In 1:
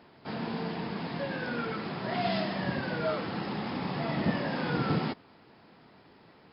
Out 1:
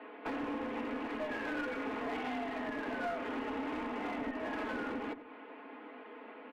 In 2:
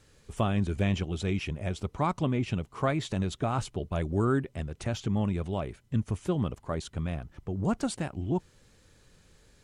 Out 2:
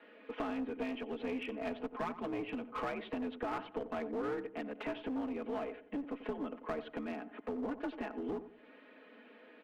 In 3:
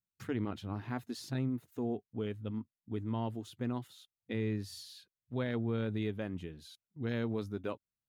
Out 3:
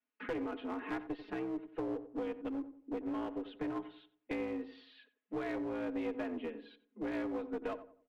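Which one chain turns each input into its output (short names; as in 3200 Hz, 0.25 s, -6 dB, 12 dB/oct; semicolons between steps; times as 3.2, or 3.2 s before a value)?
comb 5 ms, depth 98%; compressor 10:1, threshold -37 dBFS; mistuned SSB +61 Hz 200–2800 Hz; one-sided clip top -42 dBFS; on a send: darkening echo 91 ms, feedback 37%, low-pass 1200 Hz, level -11.5 dB; on the sum: gain +5 dB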